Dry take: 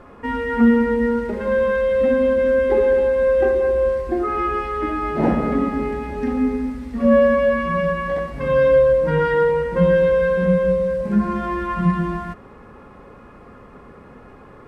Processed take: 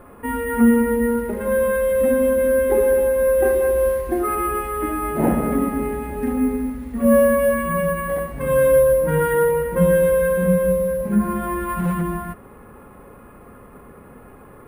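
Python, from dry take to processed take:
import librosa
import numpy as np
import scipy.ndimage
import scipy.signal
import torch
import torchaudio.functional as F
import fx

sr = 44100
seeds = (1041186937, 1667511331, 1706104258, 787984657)

y = fx.high_shelf(x, sr, hz=2000.0, db=7.0, at=(3.45, 4.35))
y = fx.clip_hard(y, sr, threshold_db=-17.5, at=(11.62, 12.02))
y = fx.air_absorb(y, sr, metres=160.0)
y = np.repeat(y[::4], 4)[:len(y)]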